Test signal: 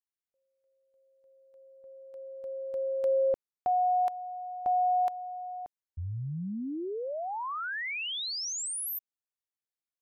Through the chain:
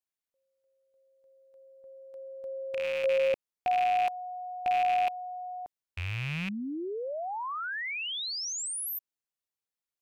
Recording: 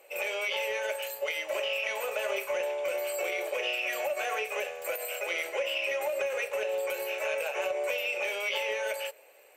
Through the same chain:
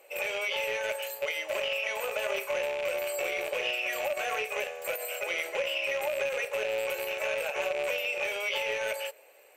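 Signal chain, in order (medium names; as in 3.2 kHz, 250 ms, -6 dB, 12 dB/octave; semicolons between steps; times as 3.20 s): rattle on loud lows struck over -49 dBFS, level -25 dBFS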